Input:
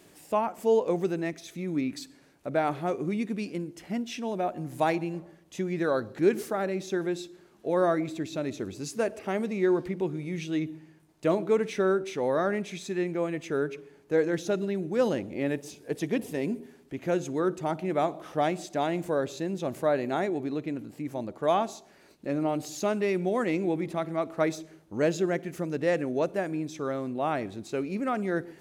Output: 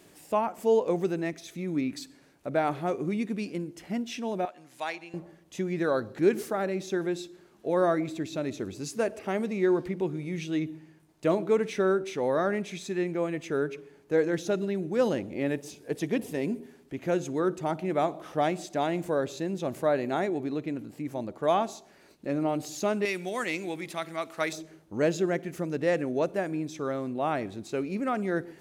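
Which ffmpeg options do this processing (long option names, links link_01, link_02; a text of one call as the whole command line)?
ffmpeg -i in.wav -filter_complex "[0:a]asettb=1/sr,asplit=3[link_01][link_02][link_03];[link_01]atrim=end=4.454[link_04];[link_02]atrim=start=4.45:end=5.14,asetpts=PTS-STARTPTS,afade=type=in:duration=0.004:curve=qsin,afade=type=out:start_time=0.686:duration=0.004:curve=qsin,bandpass=frequency=3500:width_type=q:width=0.58[link_05];[link_03]atrim=start=5.136[link_06];[link_04][link_05]acrossfade=duration=0.004:curve1=hsin:curve2=qsin[link_07];[link_07][link_06]acrossfade=duration=0.004:curve1=qsin:curve2=hsin,asettb=1/sr,asplit=3[link_08][link_09][link_10];[link_08]atrim=end=23.054[link_11];[link_09]atrim=start=23.05:end=24.53,asetpts=PTS-STARTPTS,afade=type=in:duration=0.004:curve=qsin,afade=type=out:start_time=1.476:duration=0.004:curve=qsin,tiltshelf=frequency=1200:gain=-9[link_12];[link_10]atrim=start=24.526[link_13];[link_11][link_12]acrossfade=duration=0.004:curve1=hsin:curve2=qsin[link_14];[link_14][link_13]acrossfade=duration=0.004:curve1=qsin:curve2=hsin" out.wav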